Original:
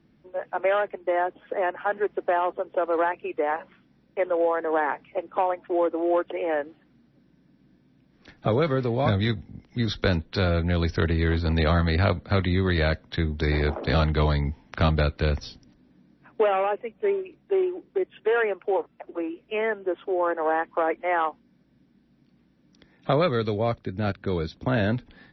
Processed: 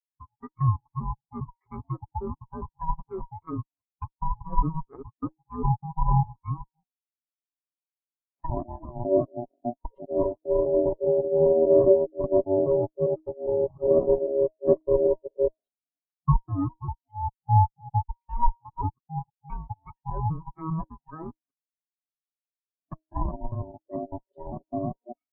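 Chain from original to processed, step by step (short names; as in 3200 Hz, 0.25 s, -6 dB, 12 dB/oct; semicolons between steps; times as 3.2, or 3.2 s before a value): local time reversal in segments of 0.201 s; ring modulator 480 Hz; high shelf 2700 Hz +8.5 dB; notch 1400 Hz, Q 11; comb 7.2 ms, depth 39%; de-hum 314.4 Hz, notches 3; tube stage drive 16 dB, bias 0.8; treble ducked by the level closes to 890 Hz, closed at -28.5 dBFS; air absorption 270 m; spectral expander 2.5:1; gain +8.5 dB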